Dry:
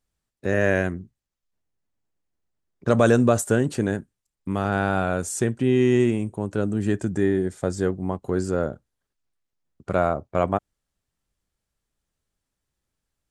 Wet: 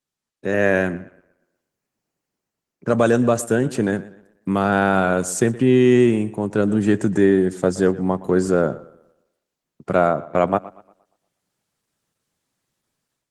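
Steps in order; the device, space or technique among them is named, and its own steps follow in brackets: 0.93–2.97 s: band-stop 3.6 kHz, Q 5.1; tape echo 119 ms, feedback 40%, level -17 dB, low-pass 4.5 kHz; video call (high-pass 120 Hz 24 dB/octave; level rider gain up to 11 dB; trim -2 dB; Opus 16 kbps 48 kHz)

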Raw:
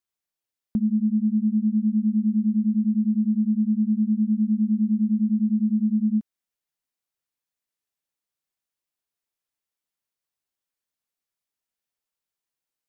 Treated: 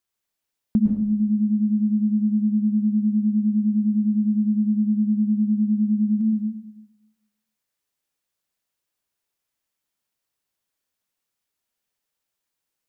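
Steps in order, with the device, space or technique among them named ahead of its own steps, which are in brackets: bathroom (reverberation RT60 0.85 s, pre-delay 105 ms, DRR 3 dB); trim +4.5 dB

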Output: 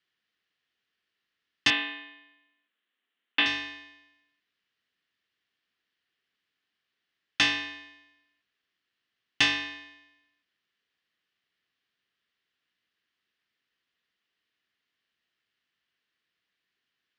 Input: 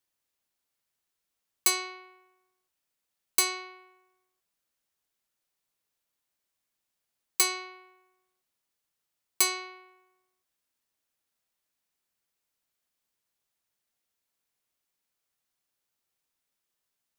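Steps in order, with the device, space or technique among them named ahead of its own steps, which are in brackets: ring modulator pedal into a guitar cabinet (polarity switched at an audio rate 1.4 kHz; cabinet simulation 76–4500 Hz, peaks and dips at 85 Hz -5 dB, 140 Hz -4 dB, 580 Hz -8 dB, 870 Hz -9 dB, 1.8 kHz +8 dB, 3 kHz +6 dB); 1.70–3.46 s: elliptic band-pass 210–3400 Hz, stop band 40 dB; trim +4.5 dB

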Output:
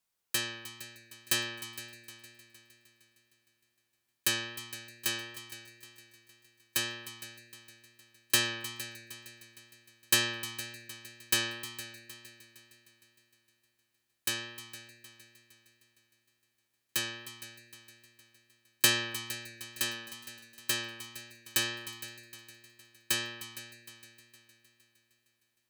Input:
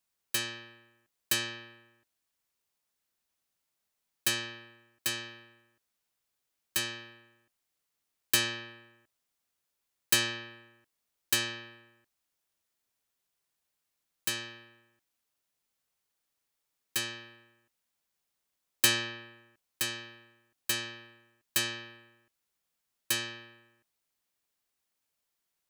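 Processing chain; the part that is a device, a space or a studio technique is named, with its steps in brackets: multi-head tape echo (multi-head delay 154 ms, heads second and third, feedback 49%, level -15 dB; wow and flutter 16 cents)

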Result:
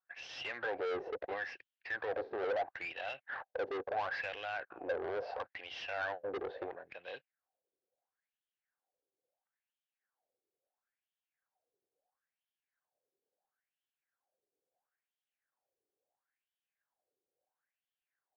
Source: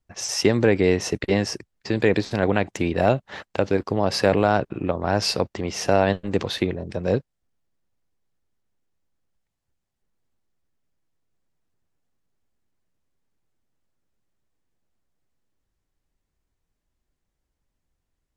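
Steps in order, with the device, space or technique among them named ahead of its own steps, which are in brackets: wah-wah guitar rig (wah-wah 0.74 Hz 390–3200 Hz, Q 5.7; valve stage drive 40 dB, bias 0.4; cabinet simulation 81–4400 Hz, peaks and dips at 200 Hz -8 dB, 520 Hz +7 dB, 750 Hz +9 dB, 1.6 kHz +9 dB); trim +2 dB

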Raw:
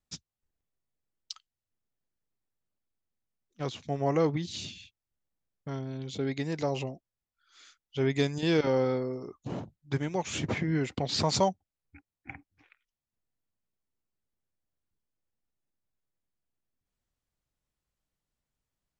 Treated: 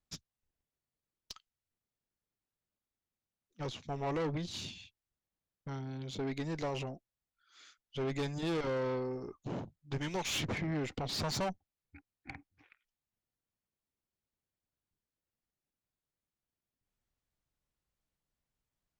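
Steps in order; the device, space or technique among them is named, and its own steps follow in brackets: 10.01–10.45 s: peaking EQ 3.9 kHz +12.5 dB 2 oct; tube preamp driven hard (valve stage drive 31 dB, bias 0.45; treble shelf 6.3 kHz -4.5 dB)

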